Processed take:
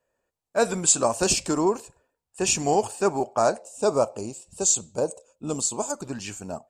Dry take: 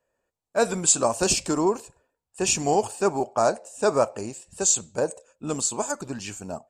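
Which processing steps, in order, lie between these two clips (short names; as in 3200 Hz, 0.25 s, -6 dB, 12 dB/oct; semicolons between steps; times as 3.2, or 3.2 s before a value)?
3.62–6.02 bell 1800 Hz -14 dB 0.64 oct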